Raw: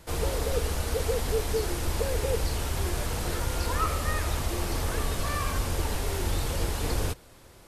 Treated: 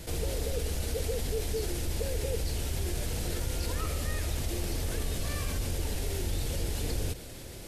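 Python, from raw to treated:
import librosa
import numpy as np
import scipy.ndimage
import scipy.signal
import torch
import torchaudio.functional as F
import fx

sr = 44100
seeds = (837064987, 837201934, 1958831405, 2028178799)

y = fx.peak_eq(x, sr, hz=1100.0, db=-12.0, octaves=1.1)
y = fx.env_flatten(y, sr, amount_pct=50)
y = y * 10.0 ** (-5.0 / 20.0)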